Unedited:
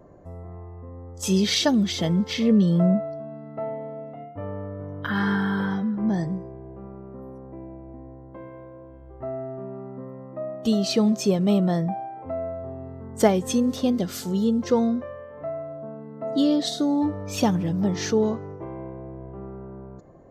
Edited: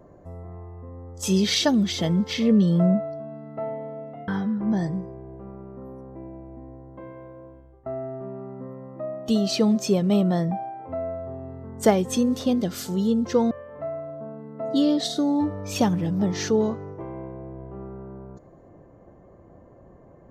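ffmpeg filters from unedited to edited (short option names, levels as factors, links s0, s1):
-filter_complex "[0:a]asplit=4[s0][s1][s2][s3];[s0]atrim=end=4.282[s4];[s1]atrim=start=5.648:end=9.23,asetpts=PTS-STARTPTS,afade=t=out:st=3.182:d=0.4:silence=0.133352[s5];[s2]atrim=start=9.23:end=14.882,asetpts=PTS-STARTPTS,afade=t=in:d=0.004:c=hsin:silence=0.133352[s6];[s3]atrim=start=15.128[s7];[s5][s6]concat=n=2:v=0:a=1[s8];[s4][s8]acrossfade=d=0.004:c1=hsin:c2=hsin[s9];[s9][s7]acrossfade=d=0.004:c1=hsin:c2=hsin"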